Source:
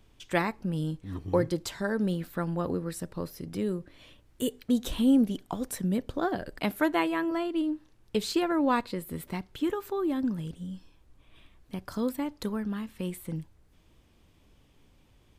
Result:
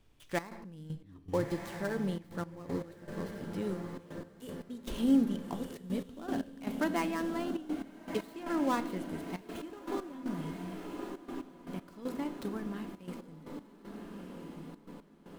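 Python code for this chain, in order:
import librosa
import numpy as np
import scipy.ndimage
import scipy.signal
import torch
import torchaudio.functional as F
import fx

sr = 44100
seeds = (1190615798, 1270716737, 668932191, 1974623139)

y = fx.dead_time(x, sr, dead_ms=0.085)
y = fx.echo_diffused(y, sr, ms=1334, feedback_pct=61, wet_db=-7.5)
y = fx.room_shoebox(y, sr, seeds[0], volume_m3=270.0, walls='mixed', distance_m=0.32)
y = fx.step_gate(y, sr, bpm=117, pattern='xxx.x..x..xxxx', floor_db=-12.0, edge_ms=4.5)
y = F.gain(torch.from_numpy(y), -6.0).numpy()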